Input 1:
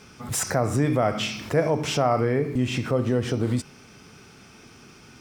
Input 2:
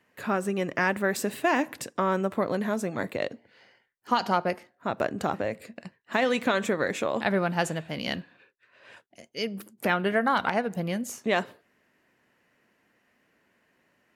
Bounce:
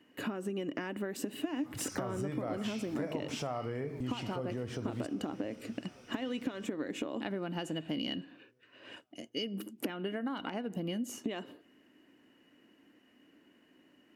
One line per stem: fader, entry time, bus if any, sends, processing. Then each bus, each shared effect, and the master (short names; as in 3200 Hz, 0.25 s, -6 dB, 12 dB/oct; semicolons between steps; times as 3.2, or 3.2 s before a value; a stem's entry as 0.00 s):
-10.5 dB, 1.45 s, no send, echo send -21.5 dB, dry
-2.5 dB, 0.00 s, no send, no echo send, compressor 6:1, threshold -32 dBFS, peak gain reduction 13 dB; small resonant body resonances 290/2900 Hz, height 17 dB, ringing for 40 ms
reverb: off
echo: feedback echo 0.795 s, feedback 53%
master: compressor 3:1, threshold -34 dBFS, peak gain reduction 10.5 dB